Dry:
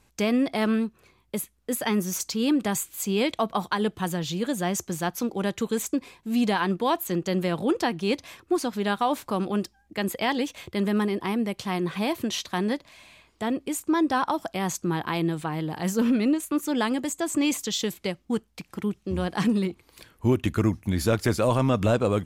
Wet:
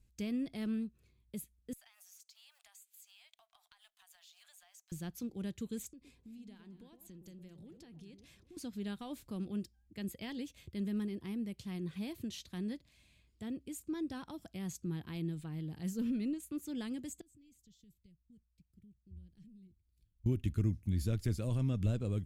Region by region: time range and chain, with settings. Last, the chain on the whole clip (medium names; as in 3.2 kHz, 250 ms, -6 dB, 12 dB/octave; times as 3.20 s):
1.73–4.92 s: companding laws mixed up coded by A + steep high-pass 660 Hz 96 dB/octave + compression, threshold -40 dBFS
5.87–8.57 s: low-pass 12 kHz + compression 5:1, threshold -39 dBFS + echo whose repeats swap between lows and highs 115 ms, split 980 Hz, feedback 50%, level -8 dB
17.21–20.26 s: compression 3:1, threshold -28 dBFS + amplifier tone stack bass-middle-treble 10-0-1
whole clip: amplifier tone stack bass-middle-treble 10-0-1; band-stop 5.9 kHz, Q 29; trim +5.5 dB